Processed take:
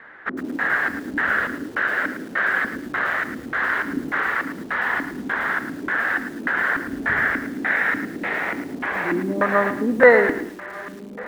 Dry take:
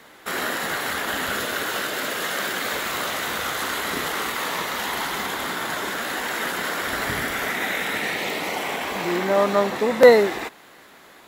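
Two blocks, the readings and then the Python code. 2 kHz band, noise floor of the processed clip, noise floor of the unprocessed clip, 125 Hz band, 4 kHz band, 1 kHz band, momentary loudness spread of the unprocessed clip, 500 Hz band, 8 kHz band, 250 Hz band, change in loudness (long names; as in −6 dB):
+5.5 dB, −37 dBFS, −48 dBFS, +0.5 dB, −13.5 dB, 0.0 dB, 7 LU, −1.5 dB, below −15 dB, +4.0 dB, +1.5 dB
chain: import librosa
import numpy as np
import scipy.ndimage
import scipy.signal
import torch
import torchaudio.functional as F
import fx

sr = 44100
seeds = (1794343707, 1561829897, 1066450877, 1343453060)

y = fx.echo_diffused(x, sr, ms=1488, feedback_pct=56, wet_db=-15.0)
y = fx.filter_lfo_lowpass(y, sr, shape='square', hz=1.7, low_hz=280.0, high_hz=1700.0, q=4.9)
y = fx.echo_crushed(y, sr, ms=110, feedback_pct=35, bits=6, wet_db=-10.0)
y = y * librosa.db_to_amplitude(-2.5)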